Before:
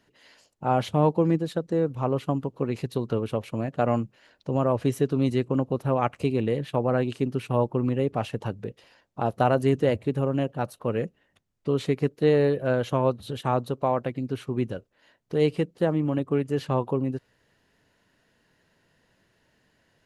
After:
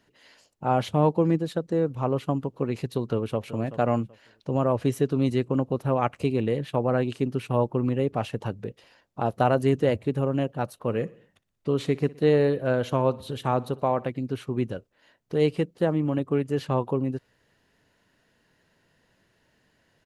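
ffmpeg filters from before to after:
-filter_complex "[0:a]asplit=2[s0][s1];[s1]afade=t=in:st=3.05:d=0.01,afade=t=out:st=3.45:d=0.01,aecho=0:1:380|760|1140:0.199526|0.0498816|0.0124704[s2];[s0][s2]amix=inputs=2:normalize=0,asplit=3[s3][s4][s5];[s3]afade=t=out:st=10.88:d=0.02[s6];[s4]aecho=1:1:60|120|180|240:0.0841|0.048|0.0273|0.0156,afade=t=in:st=10.88:d=0.02,afade=t=out:st=14.08:d=0.02[s7];[s5]afade=t=in:st=14.08:d=0.02[s8];[s6][s7][s8]amix=inputs=3:normalize=0"

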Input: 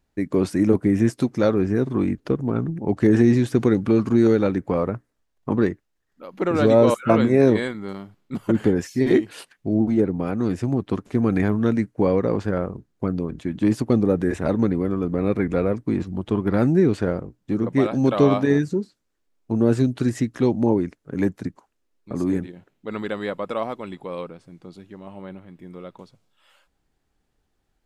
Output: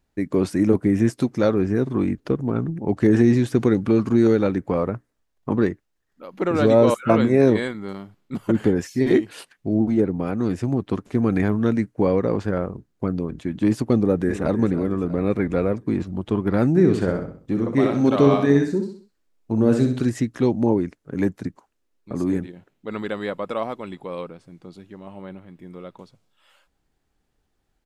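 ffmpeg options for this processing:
-filter_complex "[0:a]asplit=2[s0][s1];[s1]afade=t=in:st=13.96:d=0.01,afade=t=out:st=14.58:d=0.01,aecho=0:1:320|640|960|1280|1600:0.237137|0.118569|0.0592843|0.0296422|0.0148211[s2];[s0][s2]amix=inputs=2:normalize=0,asplit=3[s3][s4][s5];[s3]afade=t=out:st=16.75:d=0.02[s6];[s4]aecho=1:1:64|128|192|256:0.473|0.18|0.0683|0.026,afade=t=in:st=16.75:d=0.02,afade=t=out:st=20.04:d=0.02[s7];[s5]afade=t=in:st=20.04:d=0.02[s8];[s6][s7][s8]amix=inputs=3:normalize=0"

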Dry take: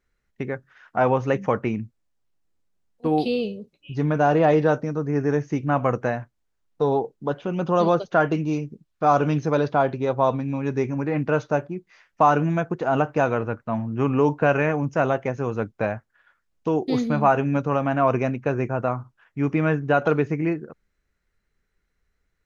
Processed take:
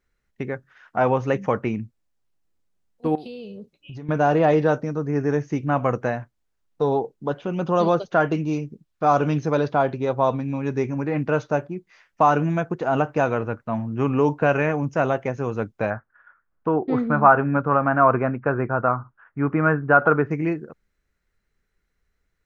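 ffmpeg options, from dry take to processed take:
-filter_complex "[0:a]asettb=1/sr,asplit=3[s0][s1][s2];[s0]atrim=end=3.154[s3];[s1]atrim=start=3.15:end=4.09,asetpts=PTS-STARTPTS,afade=t=in:d=0.004:c=qsin,afade=t=out:st=0.936:d=0.004:c=qsin,acompressor=threshold=0.0224:ratio=8:attack=3.2:release=140:knee=1:detection=peak[s4];[s2]atrim=start=4.086[s5];[s3][s4]acrossfade=d=0.004:c1=hsin:c2=qsin[s6];[s6][s5]acrossfade=d=0.004:c1=qsin:c2=hsin,asettb=1/sr,asplit=3[s7][s8][s9];[s7]atrim=end=15.904[s10];[s8]atrim=start=15.9:end=20.31,asetpts=PTS-STARTPTS,afade=t=in:d=0.004:c=qsin,afade=t=out:st=4.406:d=0.004:c=qsin,lowpass=f=1400:t=q:w=2.9[s11];[s9]atrim=start=20.306[s12];[s10][s11]acrossfade=d=0.004:c1=hsin:c2=qsin[s13];[s13][s12]acrossfade=d=0.004:c1=qsin:c2=hsin"

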